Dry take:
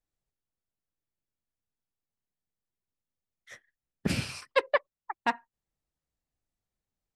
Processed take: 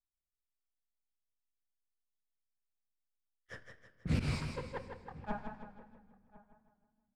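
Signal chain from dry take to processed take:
pitch shifter swept by a sawtooth −2.5 semitones, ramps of 414 ms
noise gate with hold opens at −52 dBFS
reversed playback
downward compressor 6 to 1, threshold −37 dBFS, peak gain reduction 16.5 dB
reversed playback
volume swells 153 ms
leveller curve on the samples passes 2
spectral tilt −3 dB per octave
slap from a distant wall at 180 metres, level −20 dB
on a send at −13 dB: convolution reverb RT60 1.8 s, pre-delay 6 ms
on the sum: feedback echo with a swinging delay time 160 ms, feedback 45%, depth 79 cents, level −7 dB
level +2.5 dB

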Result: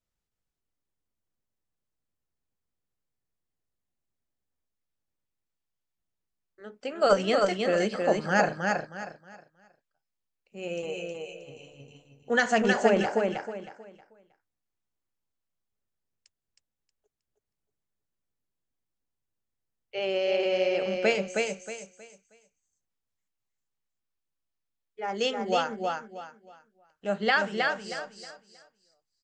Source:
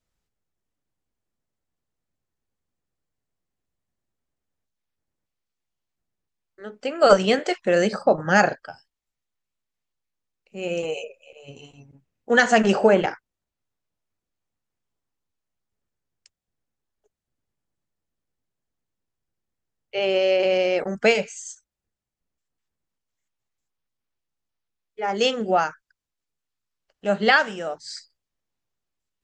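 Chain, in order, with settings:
repeating echo 316 ms, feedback 28%, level −3.5 dB
level −7 dB

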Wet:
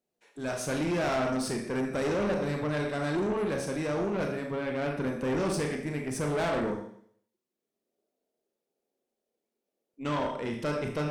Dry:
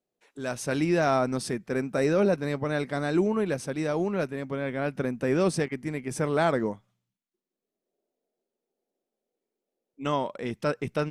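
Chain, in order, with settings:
four-comb reverb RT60 0.62 s, combs from 27 ms, DRR 2.5 dB
tube saturation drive 25 dB, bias 0.35

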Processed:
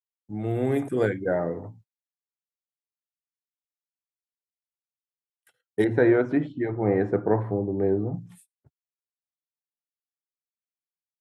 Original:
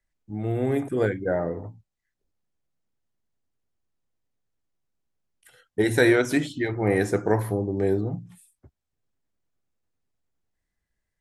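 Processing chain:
high-pass filter 100 Hz 24 dB per octave
noise gate −52 dBFS, range −32 dB
0:05.84–0:08.14: low-pass filter 1,200 Hz 12 dB per octave

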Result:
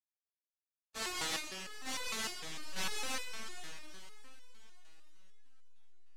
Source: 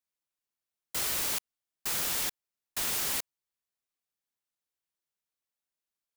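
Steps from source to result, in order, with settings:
pitch shift by two crossfaded delay taps −2.5 semitones
noise gate with hold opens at −32 dBFS
in parallel at −11 dB: slack as between gear wheels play −36 dBFS
on the sum: high-frequency loss of the air 70 metres
on a send: feedback delay with all-pass diffusion 474 ms, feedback 46%, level −12.5 dB
on the sum: comb and all-pass reverb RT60 2.8 s, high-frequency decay 0.85×, pre-delay 30 ms, DRR 6.5 dB
step-sequenced resonator 6.6 Hz 160–500 Hz
level +10 dB

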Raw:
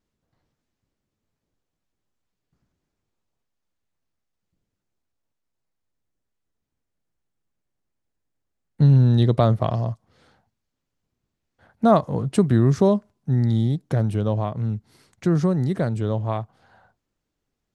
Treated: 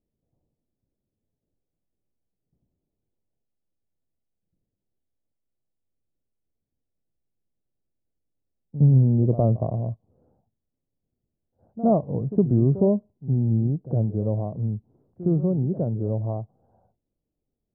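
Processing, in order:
inverse Chebyshev low-pass filter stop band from 3,900 Hz, stop band 80 dB
echo ahead of the sound 63 ms −14.5 dB
level −2 dB

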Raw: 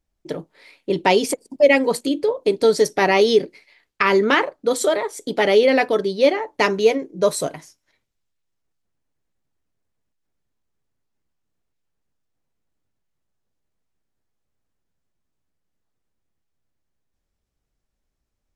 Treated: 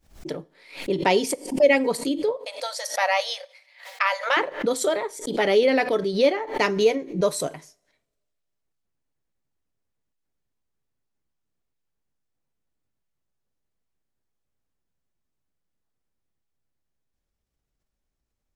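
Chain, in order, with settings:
0:02.37–0:04.37: linear-phase brick-wall high-pass 490 Hz
coupled-rooms reverb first 0.45 s, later 1.7 s, from −27 dB, DRR 18.5 dB
background raised ahead of every attack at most 130 dB per second
level −4 dB

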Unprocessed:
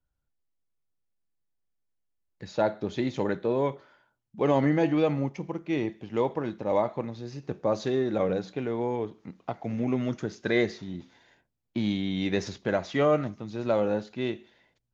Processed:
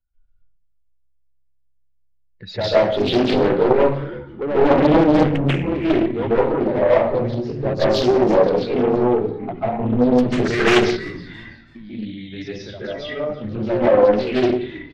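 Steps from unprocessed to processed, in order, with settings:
expanding power law on the bin magnitudes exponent 1.7
Butterworth low-pass 5,900 Hz
parametric band 2,700 Hz +14 dB 1.9 octaves
0:10.77–0:13.30: downward compressor 2 to 1, threshold −52 dBFS, peak gain reduction 18.5 dB
soft clipping −22 dBFS, distortion −12 dB
echo with shifted repeats 333 ms, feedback 35%, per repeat −66 Hz, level −18.5 dB
convolution reverb RT60 0.55 s, pre-delay 135 ms, DRR −9.5 dB
highs frequency-modulated by the lows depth 0.94 ms
level +2.5 dB

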